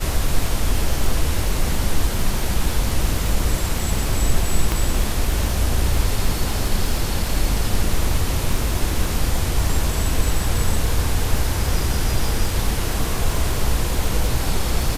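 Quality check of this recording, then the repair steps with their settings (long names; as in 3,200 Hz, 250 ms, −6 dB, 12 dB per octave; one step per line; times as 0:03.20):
surface crackle 35 per second −23 dBFS
0:04.72: click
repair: click removal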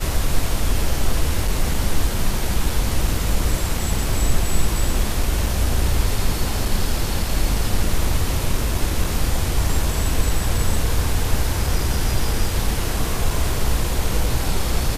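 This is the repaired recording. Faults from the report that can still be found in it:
0:04.72: click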